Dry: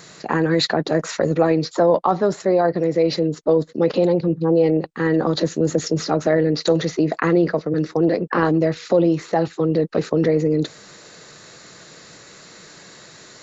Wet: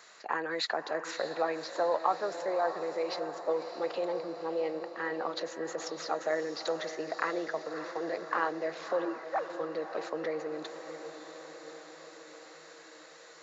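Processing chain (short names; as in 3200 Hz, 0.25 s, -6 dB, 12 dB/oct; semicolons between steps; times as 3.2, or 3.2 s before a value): 9.05–9.5 sine-wave speech; HPF 830 Hz 12 dB/oct; high shelf 2300 Hz -9.5 dB; diffused feedback echo 0.604 s, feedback 65%, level -10 dB; gain -5 dB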